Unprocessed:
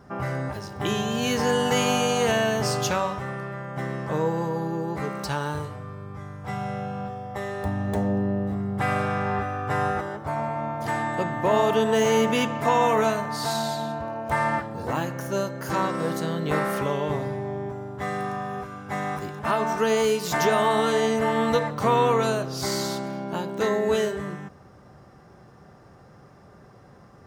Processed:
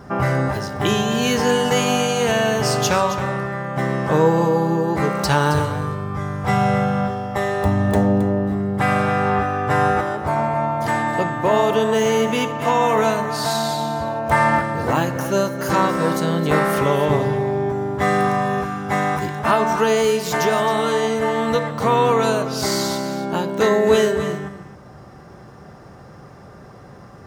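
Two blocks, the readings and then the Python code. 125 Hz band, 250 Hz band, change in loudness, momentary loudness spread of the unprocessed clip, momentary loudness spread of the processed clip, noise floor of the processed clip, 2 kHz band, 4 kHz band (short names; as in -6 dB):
+7.5 dB, +6.5 dB, +6.0 dB, 12 LU, 6 LU, -42 dBFS, +6.5 dB, +5.0 dB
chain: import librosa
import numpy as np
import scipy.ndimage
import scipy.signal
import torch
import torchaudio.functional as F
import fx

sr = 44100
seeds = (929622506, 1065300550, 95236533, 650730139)

y = fx.rider(x, sr, range_db=10, speed_s=2.0)
y = y + 10.0 ** (-12.0 / 20.0) * np.pad(y, (int(269 * sr / 1000.0), 0))[:len(y)]
y = F.gain(torch.from_numpy(y), 5.5).numpy()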